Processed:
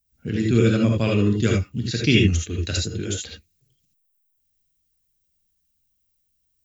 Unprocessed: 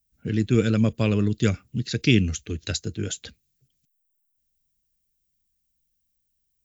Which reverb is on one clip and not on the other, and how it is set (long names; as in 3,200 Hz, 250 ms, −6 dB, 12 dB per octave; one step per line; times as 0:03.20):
reverb whose tail is shaped and stops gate 100 ms rising, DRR −1 dB